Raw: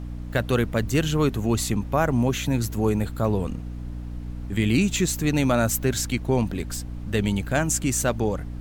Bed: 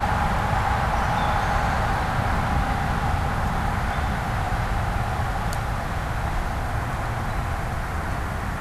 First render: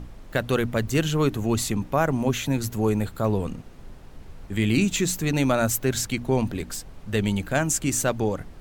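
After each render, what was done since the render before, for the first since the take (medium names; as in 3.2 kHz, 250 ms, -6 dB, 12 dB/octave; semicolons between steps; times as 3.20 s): hum notches 60/120/180/240/300 Hz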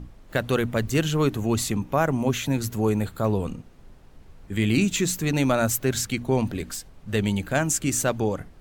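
noise print and reduce 6 dB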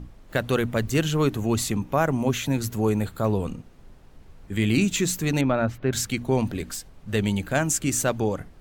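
5.41–5.93 s: distance through air 360 m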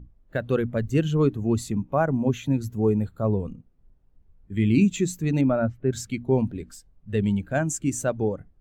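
spectral contrast expander 1.5:1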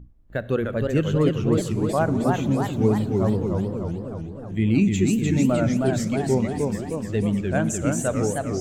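Schroeder reverb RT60 2.6 s, combs from 29 ms, DRR 14.5 dB; modulated delay 307 ms, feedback 62%, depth 203 cents, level -3.5 dB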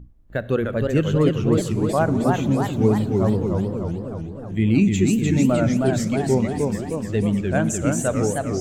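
trim +2 dB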